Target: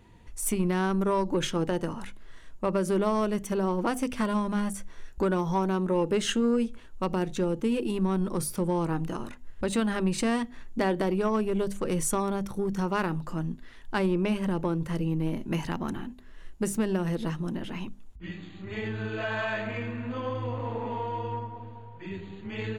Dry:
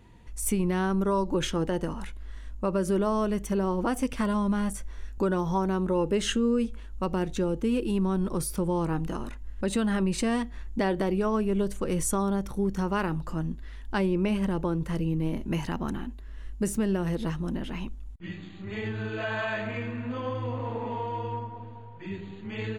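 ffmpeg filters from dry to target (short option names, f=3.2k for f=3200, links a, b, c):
-af "aeval=exprs='0.2*(cos(1*acos(clip(val(0)/0.2,-1,1)))-cos(1*PI/2))+0.02*(cos(4*acos(clip(val(0)/0.2,-1,1)))-cos(4*PI/2))+0.0178*(cos(6*acos(clip(val(0)/0.2,-1,1)))-cos(6*PI/2))+0.00251*(cos(8*acos(clip(val(0)/0.2,-1,1)))-cos(8*PI/2))':c=same,bandreject=f=50:t=h:w=6,bandreject=f=100:t=h:w=6,bandreject=f=150:t=h:w=6,bandreject=f=200:t=h:w=6,bandreject=f=250:t=h:w=6"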